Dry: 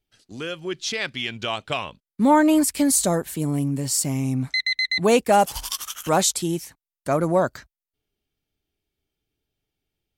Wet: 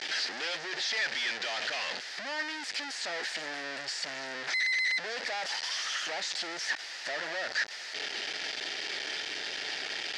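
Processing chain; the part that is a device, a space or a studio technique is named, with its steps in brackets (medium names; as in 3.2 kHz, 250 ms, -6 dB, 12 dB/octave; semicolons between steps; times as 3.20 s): home computer beeper (one-bit comparator; cabinet simulation 680–5600 Hz, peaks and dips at 1.1 kHz -9 dB, 1.8 kHz +10 dB, 4.8 kHz +6 dB); trim -8 dB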